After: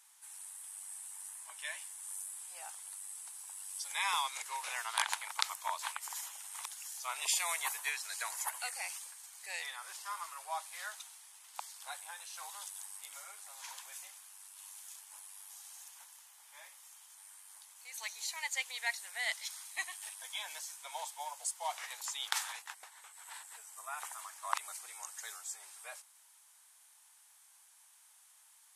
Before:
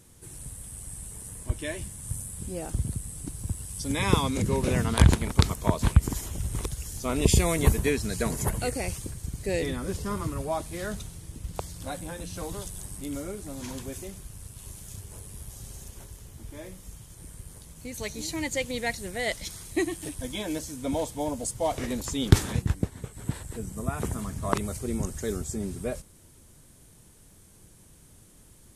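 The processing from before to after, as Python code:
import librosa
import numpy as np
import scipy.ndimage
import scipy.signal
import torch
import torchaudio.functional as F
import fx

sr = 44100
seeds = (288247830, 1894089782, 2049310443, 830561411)

y = scipy.signal.sosfilt(scipy.signal.ellip(4, 1.0, 80, 830.0, 'highpass', fs=sr, output='sos'), x)
y = F.gain(torch.from_numpy(y), -3.5).numpy()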